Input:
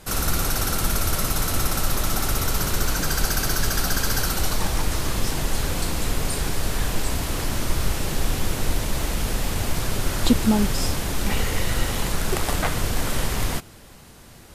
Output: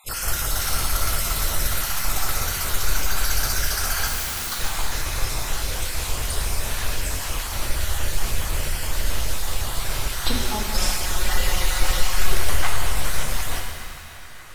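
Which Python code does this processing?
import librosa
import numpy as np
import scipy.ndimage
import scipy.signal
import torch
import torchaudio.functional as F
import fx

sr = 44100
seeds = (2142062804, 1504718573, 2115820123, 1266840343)

y = fx.spec_dropout(x, sr, seeds[0], share_pct=31)
y = fx.peak_eq(y, sr, hz=210.0, db=-15.0, octaves=1.9)
y = fx.overflow_wrap(y, sr, gain_db=26.5, at=(4.07, 4.52))
y = fx.comb(y, sr, ms=5.5, depth=0.92, at=(10.74, 12.32))
y = fx.echo_banded(y, sr, ms=586, feedback_pct=73, hz=1600.0, wet_db=-14.0)
y = fx.rev_shimmer(y, sr, seeds[1], rt60_s=1.9, semitones=7, shimmer_db=-8, drr_db=1.0)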